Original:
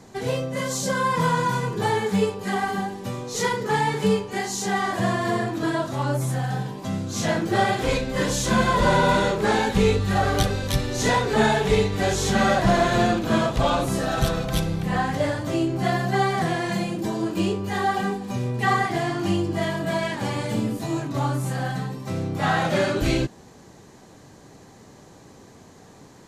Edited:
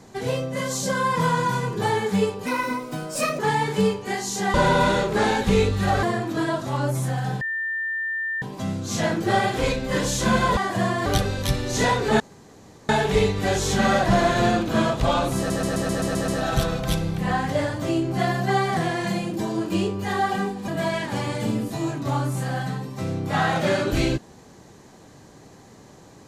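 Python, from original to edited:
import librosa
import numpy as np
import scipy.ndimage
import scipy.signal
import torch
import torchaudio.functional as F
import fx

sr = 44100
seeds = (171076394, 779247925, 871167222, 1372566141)

y = fx.edit(x, sr, fx.speed_span(start_s=2.46, length_s=1.19, speed=1.28),
    fx.swap(start_s=4.8, length_s=0.49, other_s=8.82, other_length_s=1.49),
    fx.insert_tone(at_s=6.67, length_s=1.01, hz=1800.0, db=-24.0),
    fx.insert_room_tone(at_s=11.45, length_s=0.69),
    fx.stutter(start_s=13.93, slice_s=0.13, count=8),
    fx.cut(start_s=18.33, length_s=1.44), tone=tone)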